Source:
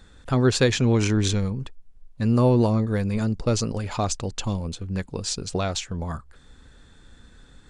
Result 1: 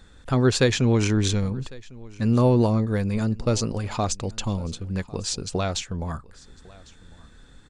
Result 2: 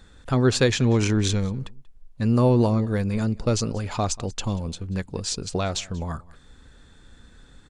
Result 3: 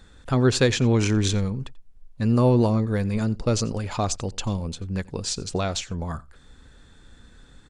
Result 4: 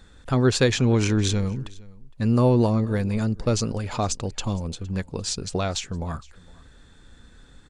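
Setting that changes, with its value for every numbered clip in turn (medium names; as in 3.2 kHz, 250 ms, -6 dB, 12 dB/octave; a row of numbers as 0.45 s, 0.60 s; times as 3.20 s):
delay, time: 1102 ms, 186 ms, 88 ms, 462 ms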